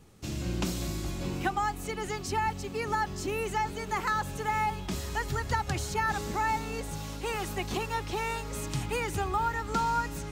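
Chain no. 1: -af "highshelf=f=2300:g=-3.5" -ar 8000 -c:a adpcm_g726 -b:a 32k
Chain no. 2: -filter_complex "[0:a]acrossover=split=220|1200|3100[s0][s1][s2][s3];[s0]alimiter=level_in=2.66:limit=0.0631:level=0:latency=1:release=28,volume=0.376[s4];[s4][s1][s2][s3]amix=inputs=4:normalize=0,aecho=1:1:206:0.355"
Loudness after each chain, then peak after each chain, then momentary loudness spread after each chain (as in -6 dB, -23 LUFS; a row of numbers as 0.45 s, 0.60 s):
-32.5 LUFS, -31.5 LUFS; -18.0 dBFS, -17.0 dBFS; 6 LU, 6 LU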